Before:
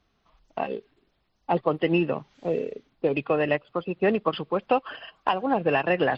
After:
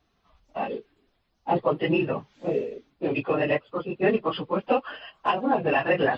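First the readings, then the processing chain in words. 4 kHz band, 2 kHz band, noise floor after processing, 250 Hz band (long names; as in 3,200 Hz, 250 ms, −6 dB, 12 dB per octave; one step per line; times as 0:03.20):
0.0 dB, +0.5 dB, −71 dBFS, 0.0 dB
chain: random phases in long frames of 50 ms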